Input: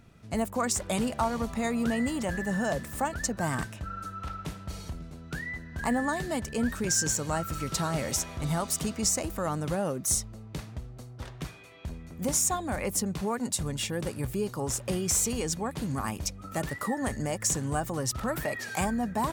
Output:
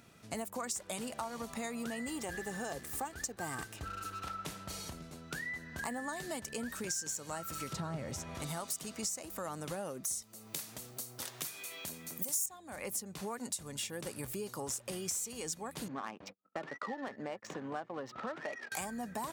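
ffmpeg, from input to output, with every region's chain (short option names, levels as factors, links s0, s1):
-filter_complex "[0:a]asettb=1/sr,asplit=3[s0][s1][s2];[s0]atrim=end=2.084[s3];[s1]atrim=start=2.08:end=4.25,asetpts=PTS-STARTPTS,afade=t=in:d=0.004:c=qsin,afade=t=out:st=2.166:d=0.004:c=qsin,lowshelf=f=320:g=5.5,aecho=1:1:2.5:0.48,atrim=end_sample=95697,aeval=exprs='sgn(val(0))*max(abs(val(0))-0.00447,0)':c=same[s4];[s2]atrim=start=4.246[s5];[s3][s4]acrossfade=d=0.004:c1=hsin:c2=qsin[s6];[s6][s5]acrossfade=d=0.004:c1=qsin:c2=hsin,asettb=1/sr,asplit=3[s7][s8][s9];[s7]atrim=end=7.734[s10];[s8]atrim=start=7.73:end=8.35,asetpts=PTS-STARTPTS,afade=t=in:d=0.004:c=qsin,afade=t=out:st=0.616:d=0.004:c=qsin,lowpass=f=1500:p=1,equalizer=f=100:w=0.74:g=13[s11];[s9]atrim=start=8.346[s12];[s10][s11]acrossfade=d=0.004:c1=hsin:c2=qsin[s13];[s13][s12]acrossfade=d=0.004:c1=qsin:c2=hsin,asettb=1/sr,asplit=3[s14][s15][s16];[s14]atrim=end=10.224[s17];[s15]atrim=start=10.22:end=12.46,asetpts=PTS-STARTPTS,afade=t=in:d=0.004:c=qsin,afade=t=out:st=2.236:d=0.004:c=qsin,highpass=140,aemphasis=mode=production:type=75fm,acompressor=mode=upward:threshold=0.00891:ratio=2.5:attack=3.2:release=140:knee=2.83:detection=peak[s18];[s16]atrim=start=12.456[s19];[s17][s18]acrossfade=d=0.004:c1=hsin:c2=qsin[s20];[s20][s19]acrossfade=d=0.004:c1=qsin:c2=hsin,asettb=1/sr,asplit=3[s21][s22][s23];[s21]atrim=end=15.884[s24];[s22]atrim=start=15.88:end=18.72,asetpts=PTS-STARTPTS,afade=t=in:d=0.004:c=qsin,afade=t=out:st=2.836:d=0.004:c=qsin,agate=range=0.00708:threshold=0.0126:ratio=16:release=100:detection=peak,highpass=240,lowpass=3500,adynamicsmooth=sensitivity=5.5:basefreq=1600[s25];[s23]atrim=start=18.716[s26];[s24][s25]acrossfade=d=0.004:c1=hsin:c2=qsin[s27];[s27][s26]acrossfade=d=0.004:c1=qsin:c2=hsin,highpass=f=290:p=1,highshelf=f=4400:g=7,acompressor=threshold=0.0126:ratio=4"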